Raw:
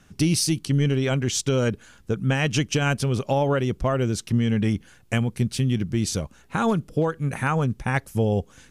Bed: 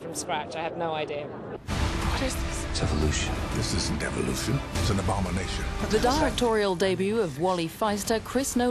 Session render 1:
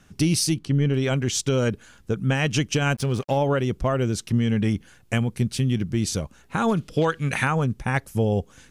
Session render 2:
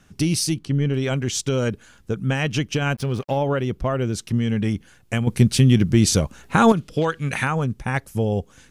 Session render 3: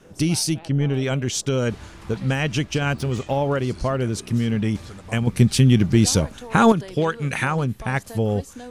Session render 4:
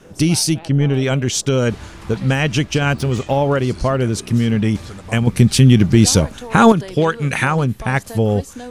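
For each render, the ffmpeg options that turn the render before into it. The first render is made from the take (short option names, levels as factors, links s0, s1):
-filter_complex "[0:a]asettb=1/sr,asplit=3[s0][s1][s2];[s0]atrim=end=0.544[s3];[s1]atrim=start=0.54:end=0.94,asetpts=PTS-STARTPTS,afade=t=in:d=0.004:c=qsin,afade=t=out:st=0.396:d=0.004:c=qsin,lowpass=f=2200:p=1[s4];[s2]atrim=start=0.936[s5];[s3][s4]acrossfade=d=0.004:c1=hsin:c2=qsin[s6];[s6][s5]acrossfade=d=0.004:c1=qsin:c2=hsin,asplit=3[s7][s8][s9];[s7]afade=t=out:st=2.93:d=0.02[s10];[s8]aeval=exprs='sgn(val(0))*max(abs(val(0))-0.00794,0)':c=same,afade=t=in:st=2.93:d=0.02,afade=t=out:st=3.36:d=0.02[s11];[s9]afade=t=in:st=3.36:d=0.02[s12];[s10][s11][s12]amix=inputs=3:normalize=0,asplit=3[s13][s14][s15];[s13]afade=t=out:st=6.76:d=0.02[s16];[s14]equalizer=f=3400:t=o:w=2.4:g=13.5,afade=t=in:st=6.76:d=0.02,afade=t=out:st=7.44:d=0.02[s17];[s15]afade=t=in:st=7.44:d=0.02[s18];[s16][s17][s18]amix=inputs=3:normalize=0"
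-filter_complex "[0:a]asettb=1/sr,asplit=3[s0][s1][s2];[s0]atrim=end=2.434[s3];[s1]atrim=start=2.43:end=4.14,asetpts=PTS-STARTPTS,afade=t=in:d=0.004:c=qsin,afade=t=out:st=1.706:d=0.004:c=qsin,equalizer=f=7800:w=1.1:g=-6[s4];[s2]atrim=start=4.136[s5];[s3][s4]acrossfade=d=0.004:c1=hsin:c2=qsin[s6];[s6][s5]acrossfade=d=0.004:c1=qsin:c2=hsin,asplit=3[s7][s8][s9];[s7]atrim=end=5.272[s10];[s8]atrim=start=5.268:end=6.722,asetpts=PTS-STARTPTS,volume=2.51[s11];[s9]atrim=start=6.718[s12];[s10][s11]acrossfade=d=0.004:c1=hsin:c2=hsin[s13];[s13][s12]acrossfade=d=0.004:c1=hsin:c2=hsin"
-filter_complex "[1:a]volume=0.2[s0];[0:a][s0]amix=inputs=2:normalize=0"
-af "volume=1.88,alimiter=limit=0.891:level=0:latency=1"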